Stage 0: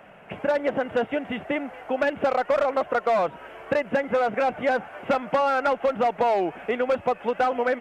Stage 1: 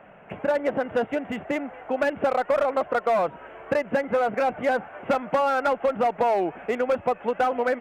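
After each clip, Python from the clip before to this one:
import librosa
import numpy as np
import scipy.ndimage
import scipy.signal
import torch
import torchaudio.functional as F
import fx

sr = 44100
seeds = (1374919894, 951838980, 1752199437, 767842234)

y = fx.wiener(x, sr, points=9)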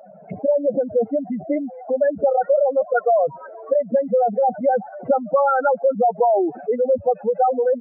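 y = fx.spec_expand(x, sr, power=3.6)
y = y * librosa.db_to_amplitude(6.0)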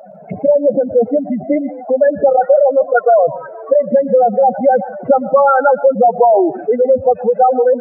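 y = fx.echo_multitap(x, sr, ms=(115, 153), db=(-18.5, -18.5))
y = y * librosa.db_to_amplitude(7.0)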